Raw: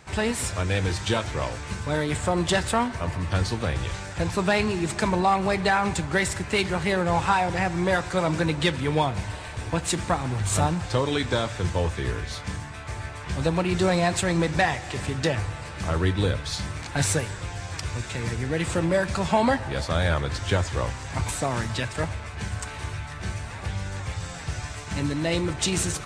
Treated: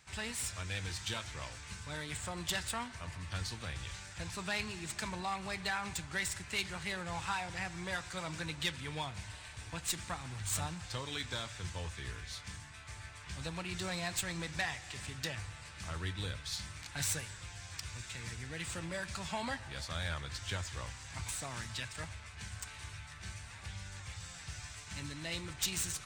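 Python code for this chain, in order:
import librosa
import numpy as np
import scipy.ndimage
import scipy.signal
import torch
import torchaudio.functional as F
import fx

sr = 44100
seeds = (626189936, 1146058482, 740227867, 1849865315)

y = fx.tracing_dist(x, sr, depth_ms=0.03)
y = fx.tone_stack(y, sr, knobs='5-5-5')
y = y * librosa.db_to_amplitude(-1.0)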